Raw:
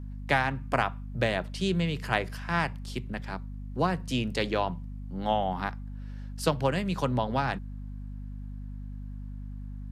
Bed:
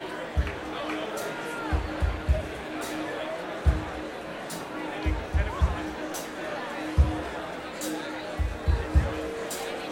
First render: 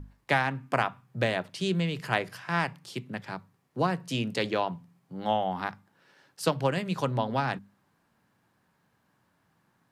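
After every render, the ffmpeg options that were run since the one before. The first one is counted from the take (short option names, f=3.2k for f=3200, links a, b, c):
-af "bandreject=f=50:t=h:w=6,bandreject=f=100:t=h:w=6,bandreject=f=150:t=h:w=6,bandreject=f=200:t=h:w=6,bandreject=f=250:t=h:w=6"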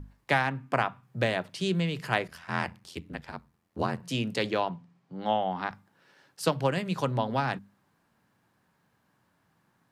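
-filter_complex "[0:a]asettb=1/sr,asplit=3[a][b][c];[a]atrim=end=0.494[d];[b]atrim=start=0.49:end=1.03,asetpts=PTS-STARTPTS,afade=t=in:d=0.004:c=qsin,afade=t=out:st=0.536:d=0.004:c=qsin,highshelf=f=4.8k:g=-5.5[e];[c]atrim=start=1.026[f];[d][e]acrossfade=d=0.004:c1=hsin:c2=qsin[g];[g][f]acrossfade=d=0.004:c1=qsin:c2=hsin,asplit=3[h][i][j];[h]afade=t=out:st=2.27:d=0.02[k];[i]aeval=exprs='val(0)*sin(2*PI*42*n/s)':c=same,afade=t=in:st=2.27:d=0.02,afade=t=out:st=4.02:d=0.02[l];[j]afade=t=in:st=4.02:d=0.02[m];[k][l][m]amix=inputs=3:normalize=0,asettb=1/sr,asplit=3[n][o][p];[n]atrim=end=4.694[q];[o]atrim=start=4.69:end=5.71,asetpts=PTS-STARTPTS,afade=t=in:d=0.004:c=qsin,afade=t=out:st=1.016:d=0.004:c=qsin,highpass=120,lowpass=5.6k[r];[p]atrim=start=5.706[s];[q][r]acrossfade=d=0.004:c1=hsin:c2=qsin[t];[t][s]acrossfade=d=0.004:c1=qsin:c2=hsin"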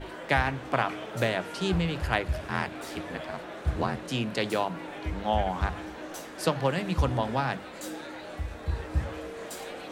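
-filter_complex "[1:a]volume=-6dB[a];[0:a][a]amix=inputs=2:normalize=0"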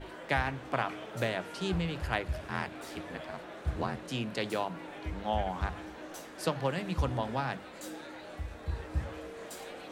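-af "volume=-5dB"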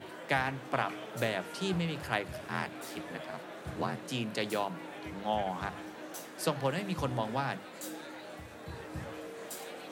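-af "highpass=f=110:w=0.5412,highpass=f=110:w=1.3066,highshelf=f=9.9k:g=9.5"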